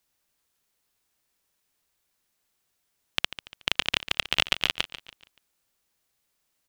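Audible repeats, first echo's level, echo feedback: 3, -13.5 dB, 41%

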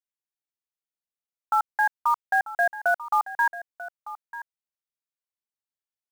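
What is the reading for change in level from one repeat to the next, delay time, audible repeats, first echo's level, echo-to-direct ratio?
no steady repeat, 0.941 s, 1, -15.0 dB, -15.0 dB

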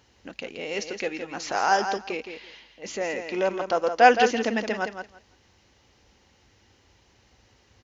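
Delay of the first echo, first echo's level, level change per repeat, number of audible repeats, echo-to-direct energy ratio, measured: 0.167 s, -8.0 dB, -16.0 dB, 2, -8.0 dB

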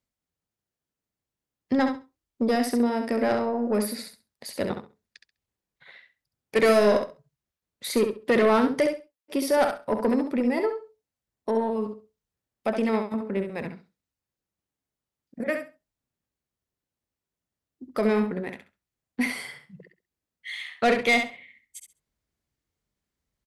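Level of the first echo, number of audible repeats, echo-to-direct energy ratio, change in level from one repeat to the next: -6.5 dB, 2, -6.5 dB, -14.5 dB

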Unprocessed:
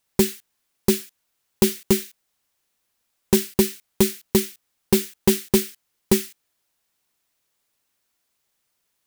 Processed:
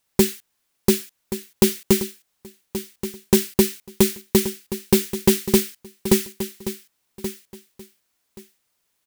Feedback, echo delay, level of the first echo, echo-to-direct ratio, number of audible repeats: 19%, 1.128 s, -12.0 dB, -12.0 dB, 2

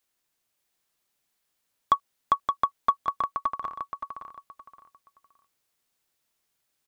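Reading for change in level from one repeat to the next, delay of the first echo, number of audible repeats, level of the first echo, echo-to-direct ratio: -12.0 dB, 0.57 s, 3, -5.5 dB, -5.0 dB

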